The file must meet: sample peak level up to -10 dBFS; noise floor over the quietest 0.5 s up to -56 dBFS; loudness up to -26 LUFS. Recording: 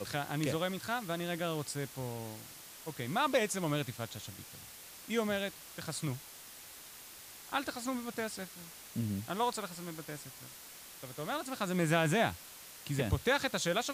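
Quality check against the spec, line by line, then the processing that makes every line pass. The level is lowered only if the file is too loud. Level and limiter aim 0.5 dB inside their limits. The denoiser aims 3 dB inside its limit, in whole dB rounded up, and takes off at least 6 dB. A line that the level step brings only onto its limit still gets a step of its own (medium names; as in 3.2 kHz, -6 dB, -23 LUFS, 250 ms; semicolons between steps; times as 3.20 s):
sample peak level -16.0 dBFS: pass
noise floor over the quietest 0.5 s -51 dBFS: fail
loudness -35.5 LUFS: pass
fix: noise reduction 8 dB, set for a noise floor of -51 dBFS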